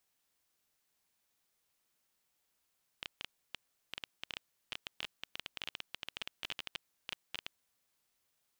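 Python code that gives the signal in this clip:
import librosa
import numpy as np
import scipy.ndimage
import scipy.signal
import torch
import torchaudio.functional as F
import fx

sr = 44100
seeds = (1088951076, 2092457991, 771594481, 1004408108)

y = fx.geiger_clicks(sr, seeds[0], length_s=4.67, per_s=12.0, level_db=-22.0)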